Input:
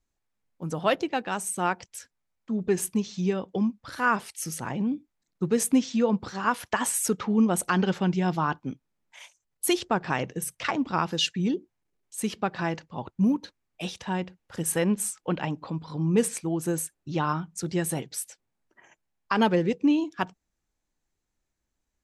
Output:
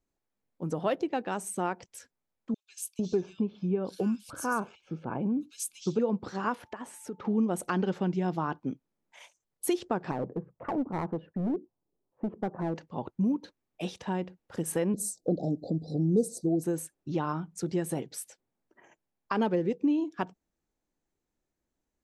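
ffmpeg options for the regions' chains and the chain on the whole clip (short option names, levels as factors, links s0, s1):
-filter_complex "[0:a]asettb=1/sr,asplit=3[s0][s1][s2];[s0]atrim=end=2.544[s3];[s1]atrim=start=2.54:end=5.99,asetpts=PTS-STARTPTS,afade=t=in:d=0.004:c=qsin,afade=t=out:st=3.446:d=0.004:c=qsin,asuperstop=centerf=1900:order=4:qfactor=4.4,acrossover=split=2700[s4][s5];[s4]adelay=450[s6];[s6][s5]amix=inputs=2:normalize=0,atrim=end_sample=152145[s7];[s2]atrim=start=5.986[s8];[s3][s7]acrossfade=d=0.004:c1=hsin:c2=qsin[s9];[s9][s8]acrossfade=d=0.004:c1=qsin:c2=hsin,asettb=1/sr,asplit=3[s10][s11][s12];[s10]atrim=end=6.554[s13];[s11]atrim=start=6.55:end=7.25,asetpts=PTS-STARTPTS,afade=t=in:d=0.004:c=qsin,afade=t=out:st=0.696:d=0.004:c=qsin,highshelf=f=4100:g=-11.5,acompressor=threshold=0.01:ratio=3:attack=3.2:release=140:knee=1:detection=peak,aeval=exprs='val(0)+0.000794*sin(2*PI*880*n/s)':c=same[s14];[s12]atrim=start=7.246[s15];[s13][s14]acrossfade=d=0.004:c1=hsin:c2=qsin[s16];[s16][s15]acrossfade=d=0.004:c1=qsin:c2=hsin,asettb=1/sr,asplit=3[s17][s18][s19];[s17]atrim=end=10.114[s20];[s18]atrim=start=10.11:end=12.76,asetpts=PTS-STARTPTS,afade=t=in:d=0.004:c=qsin,afade=t=out:st=2.646:d=0.004:c=qsin,lowpass=f=1100:w=0.5412,lowpass=f=1100:w=1.3066,aeval=exprs='clip(val(0),-1,0.0376)':c=same[s21];[s19]atrim=start=12.756[s22];[s20][s21]acrossfade=d=0.004:c1=hsin:c2=qsin[s23];[s23][s22]acrossfade=d=0.004:c1=qsin:c2=hsin,asettb=1/sr,asplit=3[s24][s25][s26];[s24]atrim=end=14.944[s27];[s25]atrim=start=14.94:end=16.64,asetpts=PTS-STARTPTS,afade=t=in:d=0.004:c=qsin,afade=t=out:st=1.696:d=0.004:c=qsin,acontrast=24,asuperstop=centerf=1700:order=20:qfactor=0.54[s28];[s26]atrim=start=16.636[s29];[s27][s28]acrossfade=d=0.004:c1=hsin:c2=qsin[s30];[s30][s29]acrossfade=d=0.004:c1=qsin:c2=hsin,equalizer=f=370:t=o:w=2.8:g=9.5,acompressor=threshold=0.0794:ratio=2,volume=0.473"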